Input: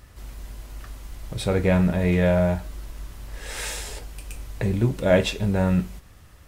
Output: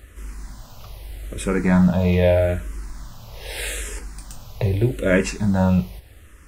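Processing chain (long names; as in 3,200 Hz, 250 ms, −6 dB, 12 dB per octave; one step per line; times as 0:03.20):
frequency shifter mixed with the dry sound −0.81 Hz
level +5.5 dB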